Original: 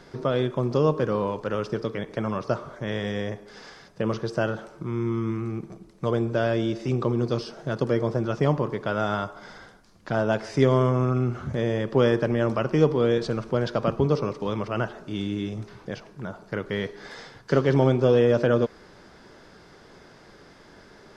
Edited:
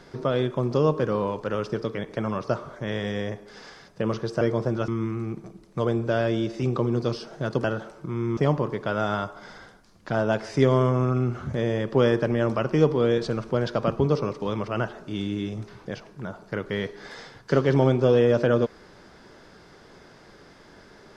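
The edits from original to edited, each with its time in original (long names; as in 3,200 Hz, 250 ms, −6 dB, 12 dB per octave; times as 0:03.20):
0:04.41–0:05.14: swap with 0:07.90–0:08.37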